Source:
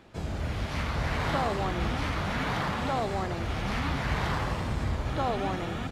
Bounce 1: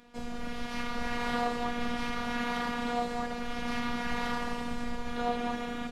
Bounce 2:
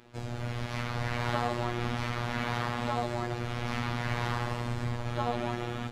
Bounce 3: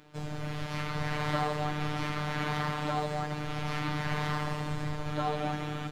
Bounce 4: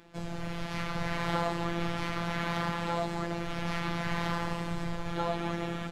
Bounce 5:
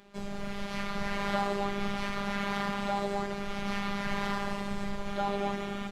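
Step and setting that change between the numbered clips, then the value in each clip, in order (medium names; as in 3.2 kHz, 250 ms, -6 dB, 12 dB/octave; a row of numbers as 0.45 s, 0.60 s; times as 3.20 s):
robot voice, frequency: 240 Hz, 120 Hz, 150 Hz, 170 Hz, 200 Hz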